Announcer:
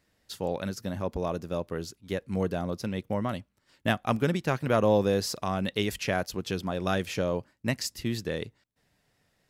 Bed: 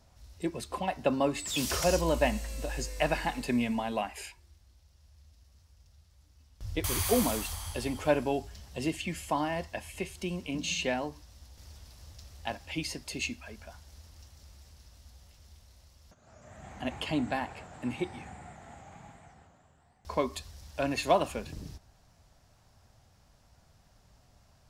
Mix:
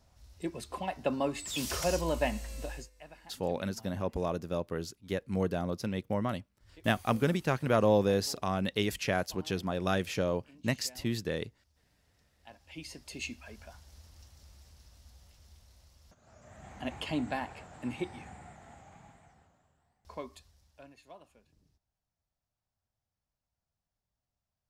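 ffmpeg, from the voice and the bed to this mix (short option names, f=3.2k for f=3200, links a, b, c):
-filter_complex "[0:a]adelay=3000,volume=-2dB[a];[1:a]volume=17.5dB,afade=t=out:st=2.67:d=0.23:silence=0.1,afade=t=in:st=12.37:d=1.19:silence=0.0891251,afade=t=out:st=18.35:d=2.61:silence=0.0562341[b];[a][b]amix=inputs=2:normalize=0"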